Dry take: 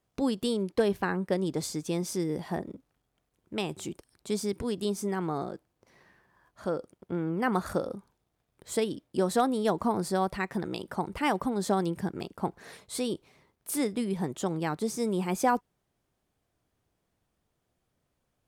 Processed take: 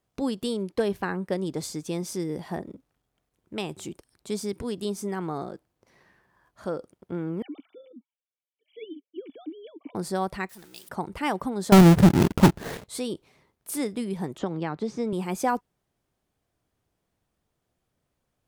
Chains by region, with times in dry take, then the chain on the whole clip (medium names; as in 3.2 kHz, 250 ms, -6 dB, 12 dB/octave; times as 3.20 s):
7.42–9.95 s: formants replaced by sine waves + cascade formant filter i + treble shelf 2.5 kHz +11 dB
10.49–10.89 s: jump at every zero crossing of -37.5 dBFS + pre-emphasis filter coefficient 0.9 + three bands expanded up and down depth 100%
11.72–12.84 s: square wave that keeps the level + bass shelf 410 Hz +10 dB + waveshaping leveller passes 2
14.38–15.13 s: distance through air 160 m + three bands compressed up and down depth 100%
whole clip: none